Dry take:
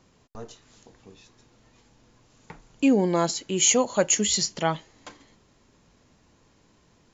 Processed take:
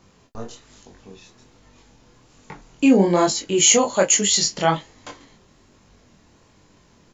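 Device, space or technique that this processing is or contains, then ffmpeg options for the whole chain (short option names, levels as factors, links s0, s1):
double-tracked vocal: -filter_complex "[0:a]asplit=2[s0][s1];[s1]adelay=21,volume=0.282[s2];[s0][s2]amix=inputs=2:normalize=0,flanger=delay=20:depth=6.7:speed=1.2,asettb=1/sr,asplit=3[s3][s4][s5];[s3]atrim=end=3.954[s6];[s4]atrim=start=3.95:end=4.43,asetpts=PTS-STARTPTS,afade=t=in:d=0.004:c=qsin,afade=t=out:st=0.476:d=0.004:c=qsin,lowshelf=f=170:g=-9.5[s7];[s5]atrim=start=4.426[s8];[s6][s7]acrossfade=d=0.004:c1=hsin:c2=qsin[s9];[s9][s8]acrossfade=d=0.004:c1=qsin:c2=hsin,volume=2.66"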